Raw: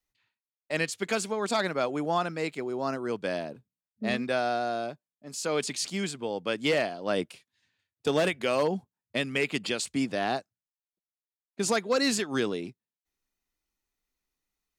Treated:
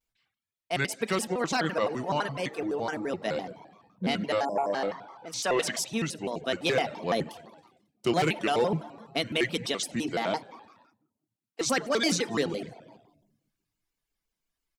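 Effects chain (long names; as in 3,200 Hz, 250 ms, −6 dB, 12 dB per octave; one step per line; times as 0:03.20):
0:10.05–0:11.65: high-pass filter 120 Hz → 380 Hz 24 dB per octave
echo with shifted repeats 92 ms, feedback 63%, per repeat +72 Hz, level −16 dB
convolution reverb RT60 0.85 s, pre-delay 5 ms, DRR 7.5 dB
0:04.45–0:04.73: time-frequency box erased 1,300–5,900 Hz
0:04.55–0:05.80: mid-hump overdrive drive 12 dB, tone 3,800 Hz, clips at −14.5 dBFS
reverb reduction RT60 0.5 s
pitch modulation by a square or saw wave square 5.9 Hz, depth 250 cents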